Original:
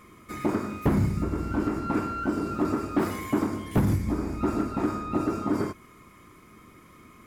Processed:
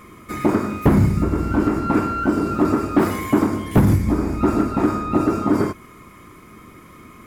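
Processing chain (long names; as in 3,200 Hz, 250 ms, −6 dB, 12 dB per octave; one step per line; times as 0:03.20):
parametric band 5,200 Hz −2.5 dB 1.9 octaves
level +8.5 dB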